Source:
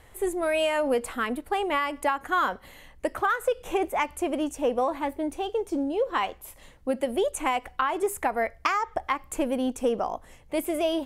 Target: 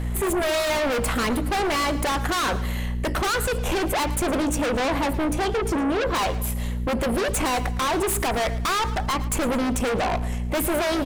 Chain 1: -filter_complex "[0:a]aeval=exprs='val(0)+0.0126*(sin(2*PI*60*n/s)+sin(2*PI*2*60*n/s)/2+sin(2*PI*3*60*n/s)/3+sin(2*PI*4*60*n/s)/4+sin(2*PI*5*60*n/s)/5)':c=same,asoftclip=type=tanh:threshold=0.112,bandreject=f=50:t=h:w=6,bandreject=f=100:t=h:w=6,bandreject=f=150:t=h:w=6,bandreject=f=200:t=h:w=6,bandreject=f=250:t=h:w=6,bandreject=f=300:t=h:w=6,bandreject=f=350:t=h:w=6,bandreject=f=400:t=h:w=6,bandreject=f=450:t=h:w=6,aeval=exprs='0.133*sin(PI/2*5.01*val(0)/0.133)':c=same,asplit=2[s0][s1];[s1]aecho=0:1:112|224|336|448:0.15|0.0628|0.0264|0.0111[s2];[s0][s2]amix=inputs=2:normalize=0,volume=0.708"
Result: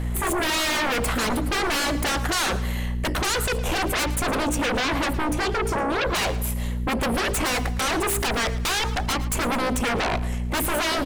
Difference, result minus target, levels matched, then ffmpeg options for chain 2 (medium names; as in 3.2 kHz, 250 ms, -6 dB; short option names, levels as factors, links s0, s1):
saturation: distortion -9 dB
-filter_complex "[0:a]aeval=exprs='val(0)+0.0126*(sin(2*PI*60*n/s)+sin(2*PI*2*60*n/s)/2+sin(2*PI*3*60*n/s)/3+sin(2*PI*4*60*n/s)/4+sin(2*PI*5*60*n/s)/5)':c=same,asoftclip=type=tanh:threshold=0.0422,bandreject=f=50:t=h:w=6,bandreject=f=100:t=h:w=6,bandreject=f=150:t=h:w=6,bandreject=f=200:t=h:w=6,bandreject=f=250:t=h:w=6,bandreject=f=300:t=h:w=6,bandreject=f=350:t=h:w=6,bandreject=f=400:t=h:w=6,bandreject=f=450:t=h:w=6,aeval=exprs='0.133*sin(PI/2*5.01*val(0)/0.133)':c=same,asplit=2[s0][s1];[s1]aecho=0:1:112|224|336|448:0.15|0.0628|0.0264|0.0111[s2];[s0][s2]amix=inputs=2:normalize=0,volume=0.708"